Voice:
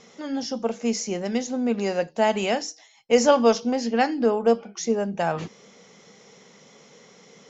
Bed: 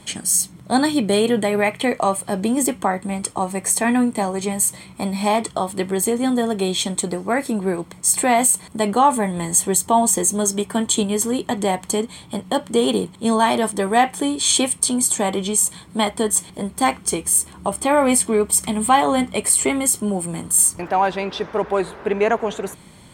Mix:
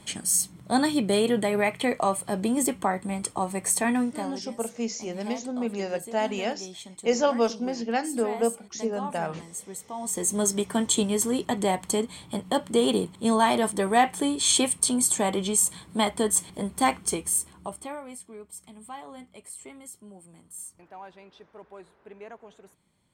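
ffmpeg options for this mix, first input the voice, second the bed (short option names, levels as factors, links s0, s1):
-filter_complex "[0:a]adelay=3950,volume=0.531[s0];[1:a]volume=3.35,afade=t=out:st=3.82:d=0.65:silence=0.177828,afade=t=in:st=9.98:d=0.43:silence=0.158489,afade=t=out:st=16.94:d=1.08:silence=0.0891251[s1];[s0][s1]amix=inputs=2:normalize=0"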